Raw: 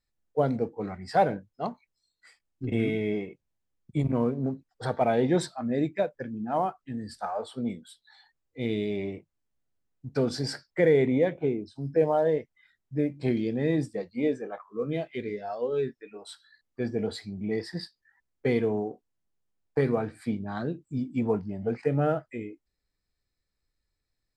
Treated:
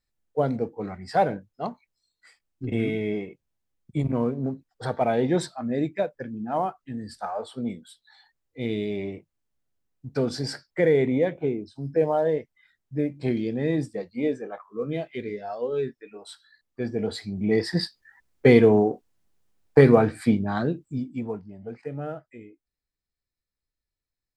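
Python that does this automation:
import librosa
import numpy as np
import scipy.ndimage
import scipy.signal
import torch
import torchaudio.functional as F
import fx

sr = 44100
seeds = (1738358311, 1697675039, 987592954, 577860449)

y = fx.gain(x, sr, db=fx.line((16.92, 1.0), (17.79, 10.5), (20.19, 10.5), (20.81, 4.5), (21.43, -8.0)))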